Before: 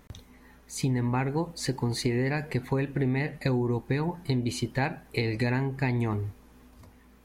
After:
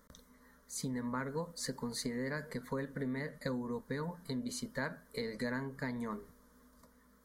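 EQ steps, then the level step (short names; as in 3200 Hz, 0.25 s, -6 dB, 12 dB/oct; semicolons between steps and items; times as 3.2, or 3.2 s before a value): low shelf 340 Hz -6.5 dB; fixed phaser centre 520 Hz, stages 8; -3.0 dB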